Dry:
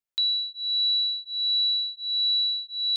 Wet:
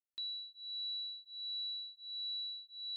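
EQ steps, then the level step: running mean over 59 samples; tilt +4.5 dB/oct; +1.0 dB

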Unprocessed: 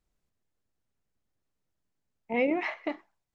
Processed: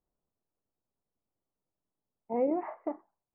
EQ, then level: LPF 1100 Hz 24 dB/oct; low shelf 160 Hz -10.5 dB; 0.0 dB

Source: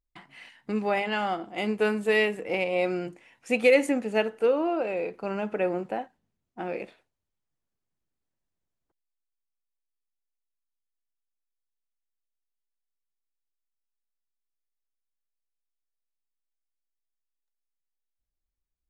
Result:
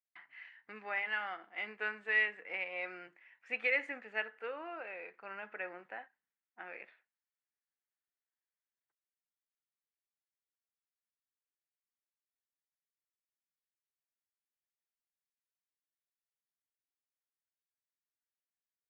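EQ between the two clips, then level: band-pass 1800 Hz, Q 2.9; air absorption 86 m; 0.0 dB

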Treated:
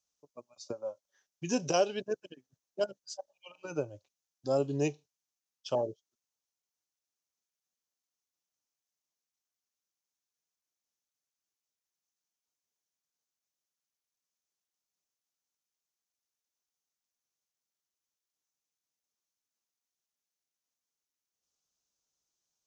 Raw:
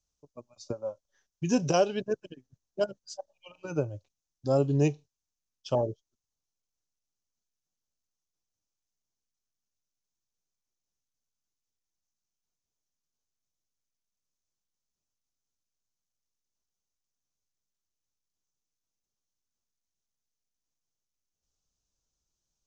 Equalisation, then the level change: HPF 430 Hz 6 dB/oct; dynamic EQ 1200 Hz, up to -3 dB, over -44 dBFS, Q 0.85; 0.0 dB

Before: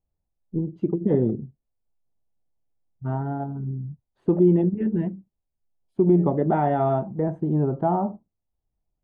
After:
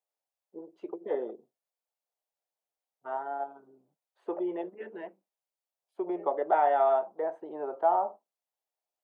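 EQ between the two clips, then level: HPF 530 Hz 24 dB/oct; 0.0 dB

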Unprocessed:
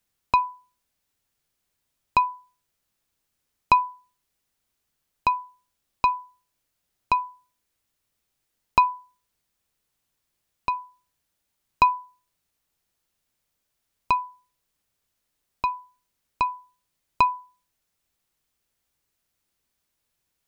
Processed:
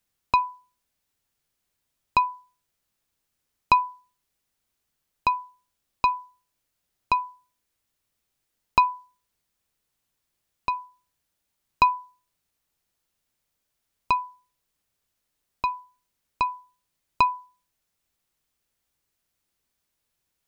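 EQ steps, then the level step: dynamic EQ 4700 Hz, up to +4 dB, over -44 dBFS, Q 0.95; -1.0 dB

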